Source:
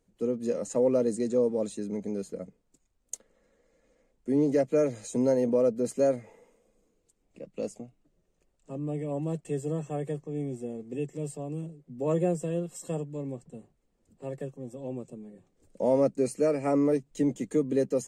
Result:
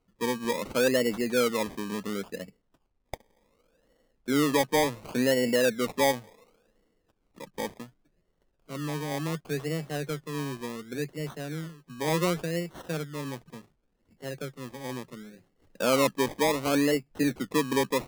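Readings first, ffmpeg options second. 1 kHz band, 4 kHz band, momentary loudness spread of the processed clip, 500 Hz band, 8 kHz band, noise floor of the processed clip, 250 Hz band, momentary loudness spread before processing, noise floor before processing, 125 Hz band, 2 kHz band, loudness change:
+8.5 dB, no reading, 18 LU, -1.5 dB, +6.0 dB, -73 dBFS, -0.5 dB, 17 LU, -73 dBFS, 0.0 dB, +16.5 dB, +0.5 dB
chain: -af "acrusher=samples=25:mix=1:aa=0.000001:lfo=1:lforange=15:lforate=0.69"

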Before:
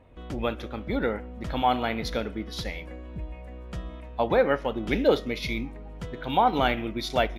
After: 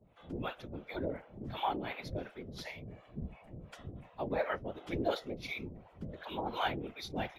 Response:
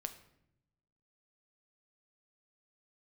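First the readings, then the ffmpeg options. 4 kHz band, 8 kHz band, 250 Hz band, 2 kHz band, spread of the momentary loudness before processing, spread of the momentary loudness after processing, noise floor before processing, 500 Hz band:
-10.5 dB, no reading, -11.5 dB, -10.0 dB, 16 LU, 13 LU, -41 dBFS, -12.5 dB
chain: -filter_complex "[0:a]acrossover=split=520[s0][s1];[s0]aeval=exprs='val(0)*(1-1/2+1/2*cos(2*PI*2.8*n/s))':c=same[s2];[s1]aeval=exprs='val(0)*(1-1/2-1/2*cos(2*PI*2.8*n/s))':c=same[s3];[s2][s3]amix=inputs=2:normalize=0,afreqshift=59,afftfilt=real='hypot(re,im)*cos(2*PI*random(0))':imag='hypot(re,im)*sin(2*PI*random(1))':win_size=512:overlap=0.75"

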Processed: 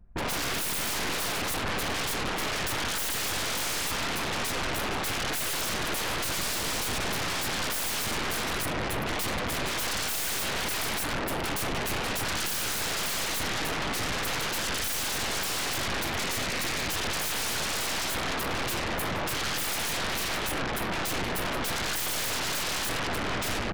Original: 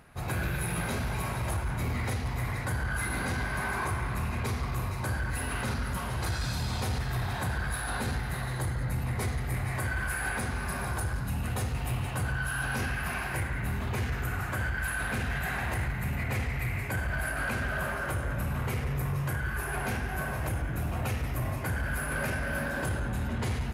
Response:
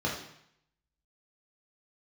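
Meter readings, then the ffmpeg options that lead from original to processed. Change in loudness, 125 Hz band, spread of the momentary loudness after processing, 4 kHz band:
+3.0 dB, -9.0 dB, 2 LU, +14.0 dB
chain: -af "anlmdn=0.398,aeval=exprs='0.0668*sin(PI/2*6.31*val(0)/0.0668)':c=same,aeval=exprs='0.0668*(cos(1*acos(clip(val(0)/0.0668,-1,1)))-cos(1*PI/2))+0.0188*(cos(2*acos(clip(val(0)/0.0668,-1,1)))-cos(2*PI/2))':c=same,volume=0.596"

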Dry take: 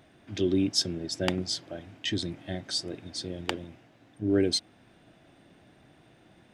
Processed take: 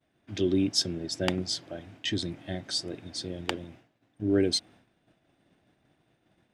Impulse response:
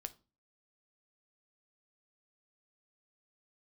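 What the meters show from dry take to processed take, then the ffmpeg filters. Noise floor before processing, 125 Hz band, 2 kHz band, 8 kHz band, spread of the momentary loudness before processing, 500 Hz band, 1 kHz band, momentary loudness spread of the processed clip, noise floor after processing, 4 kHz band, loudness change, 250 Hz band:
-60 dBFS, 0.0 dB, 0.0 dB, 0.0 dB, 12 LU, 0.0 dB, 0.0 dB, 12 LU, -73 dBFS, 0.0 dB, 0.0 dB, 0.0 dB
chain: -af "agate=range=0.0224:threshold=0.00355:ratio=3:detection=peak"

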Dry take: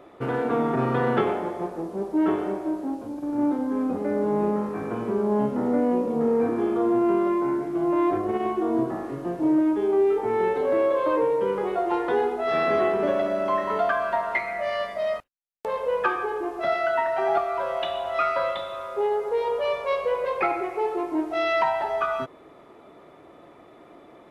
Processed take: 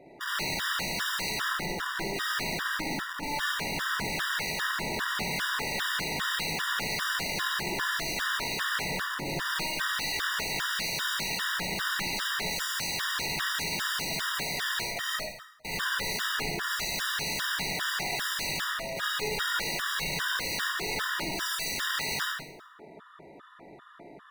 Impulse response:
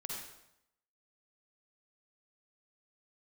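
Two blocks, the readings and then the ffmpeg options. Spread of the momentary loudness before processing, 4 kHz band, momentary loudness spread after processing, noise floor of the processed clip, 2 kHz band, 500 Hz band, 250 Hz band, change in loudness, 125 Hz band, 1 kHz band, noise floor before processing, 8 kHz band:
7 LU, +13.0 dB, 2 LU, -51 dBFS, +5.0 dB, -17.5 dB, -16.0 dB, -5.0 dB, -4.0 dB, -8.0 dB, -50 dBFS, no reading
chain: -filter_complex "[0:a]aeval=exprs='(mod(22.4*val(0)+1,2)-1)/22.4':c=same,equalizer=f=160:t=o:w=0.67:g=6,equalizer=f=1600:t=o:w=0.67:g=10,equalizer=f=4000:t=o:w=0.67:g=6[s0];[1:a]atrim=start_sample=2205[s1];[s0][s1]afir=irnorm=-1:irlink=0,afftfilt=real='re*gt(sin(2*PI*2.5*pts/sr)*(1-2*mod(floor(b*sr/1024/960),2)),0)':imag='im*gt(sin(2*PI*2.5*pts/sr)*(1-2*mod(floor(b*sr/1024/960),2)),0)':win_size=1024:overlap=0.75"

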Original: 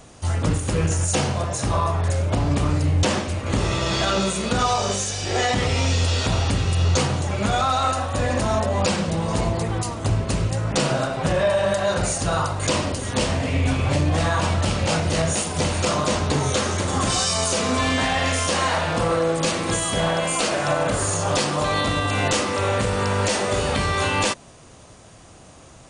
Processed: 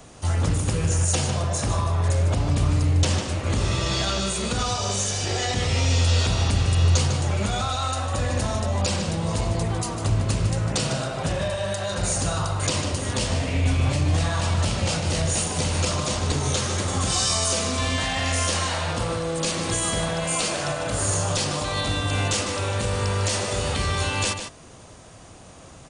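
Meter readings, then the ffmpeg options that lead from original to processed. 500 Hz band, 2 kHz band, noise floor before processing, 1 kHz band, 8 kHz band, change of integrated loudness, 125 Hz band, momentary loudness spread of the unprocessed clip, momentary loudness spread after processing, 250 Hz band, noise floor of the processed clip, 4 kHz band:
-5.5 dB, -4.0 dB, -46 dBFS, -5.5 dB, +0.5 dB, -2.0 dB, 0.0 dB, 3 LU, 5 LU, -4.0 dB, -45 dBFS, -1.0 dB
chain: -filter_complex "[0:a]acrossover=split=130|3000[s0][s1][s2];[s1]acompressor=threshold=0.0447:ratio=6[s3];[s0][s3][s2]amix=inputs=3:normalize=0,asplit=2[s4][s5];[s5]adelay=151.6,volume=0.447,highshelf=f=4000:g=-3.41[s6];[s4][s6]amix=inputs=2:normalize=0"

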